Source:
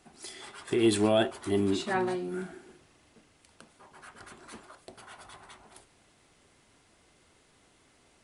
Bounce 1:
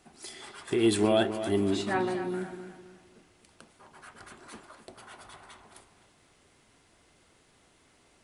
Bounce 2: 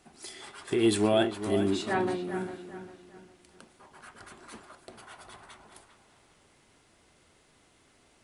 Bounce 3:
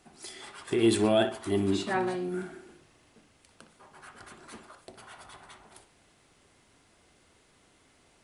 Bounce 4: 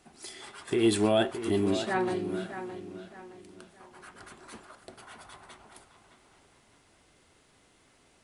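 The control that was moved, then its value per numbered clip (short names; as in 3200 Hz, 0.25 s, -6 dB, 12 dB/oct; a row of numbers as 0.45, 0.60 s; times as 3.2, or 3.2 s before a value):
dark delay, time: 260, 402, 61, 617 ms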